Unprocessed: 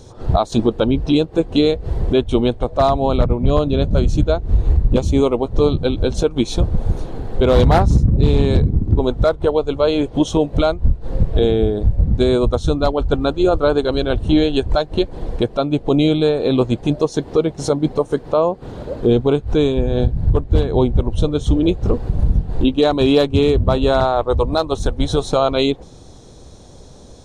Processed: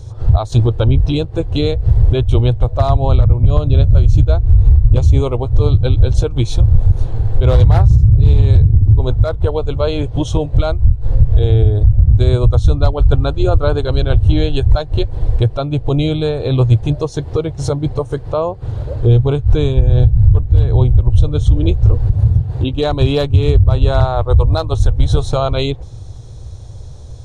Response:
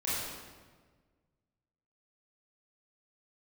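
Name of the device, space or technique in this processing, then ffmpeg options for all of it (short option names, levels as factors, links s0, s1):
car stereo with a boomy subwoofer: -filter_complex "[0:a]asettb=1/sr,asplit=3[s0][s1][s2];[s0]atrim=end=22.134[s3];[s1]atrim=start=22.13:end=22.73,asetpts=PTS-STARTPTS,afade=t=in:d=0.004:c=qsin,afade=t=out:st=0.596:d=0.004:c=qsin,highpass=110[s4];[s2]atrim=start=22.726[s5];[s3][s4]acrossfade=d=0.004:c1=hsin:c2=qsin[s6];[s6][s5]acrossfade=d=0.004:c1=qsin:c2=hsin,lowshelf=f=150:t=q:w=3:g=10.5,alimiter=limit=0.944:level=0:latency=1:release=106,volume=0.891"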